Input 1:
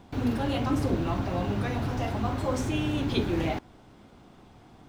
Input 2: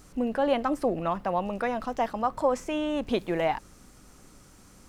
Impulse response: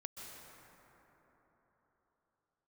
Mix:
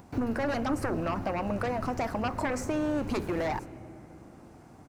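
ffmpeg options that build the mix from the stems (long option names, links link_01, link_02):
-filter_complex "[0:a]highpass=51,acompressor=mode=upward:threshold=-47dB:ratio=2.5,volume=-3.5dB,asplit=2[link_01][link_02];[link_02]volume=-8dB[link_03];[1:a]aeval=exprs='0.251*sin(PI/2*3.55*val(0)/0.251)':channel_layout=same,agate=range=-23dB:threshold=-25dB:ratio=16:detection=peak,acompressor=threshold=-23dB:ratio=6,adelay=7.1,volume=-5.5dB,asplit=2[link_04][link_05];[link_05]apad=whole_len=215318[link_06];[link_01][link_06]sidechaincompress=threshold=-37dB:ratio=8:attack=16:release=1150[link_07];[2:a]atrim=start_sample=2205[link_08];[link_03][link_08]afir=irnorm=-1:irlink=0[link_09];[link_07][link_04][link_09]amix=inputs=3:normalize=0,equalizer=frequency=3400:width_type=o:width=0.5:gain=-11"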